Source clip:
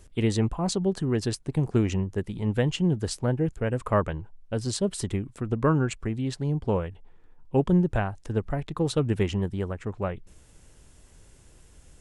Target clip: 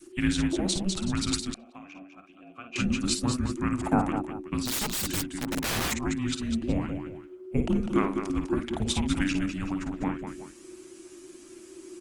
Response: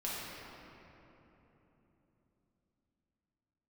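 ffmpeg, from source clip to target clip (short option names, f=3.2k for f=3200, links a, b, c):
-filter_complex "[0:a]equalizer=f=270:t=o:w=2.5:g=-12.5,asplit=2[a][b];[b]aecho=0:1:53|201|376:0.422|0.422|0.15[c];[a][c]amix=inputs=2:normalize=0,asettb=1/sr,asplit=3[d][e][f];[d]atrim=end=4.664[g];[e]atrim=start=4.66:end=5.92,asetpts=PTS-STARTPTS,afade=t=in:d=0.004:c=qsin,afade=t=out:st=1.256:d=0.004:c=qsin,aeval=exprs='(mod(28.2*val(0)+1,2)-1)/28.2':c=same[h];[f]atrim=start=5.916[i];[g][h]acrossfade=d=0.004:c1=hsin:c2=qsin[j];[j][i]acrossfade=d=0.004:c1=qsin:c2=hsin,afreqshift=-380,asettb=1/sr,asplit=3[k][l][m];[k]atrim=end=1.544[n];[l]atrim=start=1.54:end=2.76,asetpts=PTS-STARTPTS,afade=t=in:d=0.004:c=qsin,afade=t=out:st=1.216:d=0.004:c=qsin,asplit=3[o][p][q];[o]bandpass=f=730:t=q:w=8,volume=0dB[r];[p]bandpass=f=1.09k:t=q:w=8,volume=-6dB[s];[q]bandpass=f=2.44k:t=q:w=8,volume=-9dB[t];[r][s][t]amix=inputs=3:normalize=0[u];[m]atrim=start=2.756[v];[n][u]acrossfade=d=0.004:c1=hsin:c2=qsin[w];[w][v]acrossfade=d=0.004:c1=qsin:c2=hsin,adynamicequalizer=threshold=0.00501:dfrequency=630:dqfactor=1:tfrequency=630:tqfactor=1:attack=5:release=100:ratio=0.375:range=1.5:mode=cutabove:tftype=bell,volume=5.5dB" -ar 48000 -c:a libopus -b:a 24k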